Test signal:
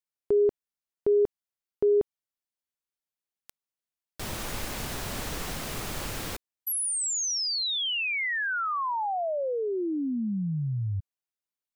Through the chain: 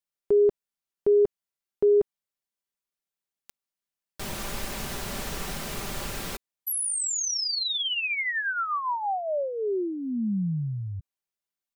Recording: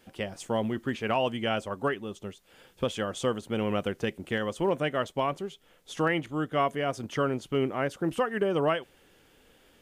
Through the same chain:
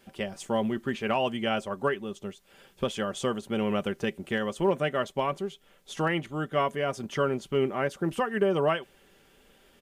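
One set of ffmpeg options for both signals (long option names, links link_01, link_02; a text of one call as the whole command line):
ffmpeg -i in.wav -af "aecho=1:1:5.1:0.39" out.wav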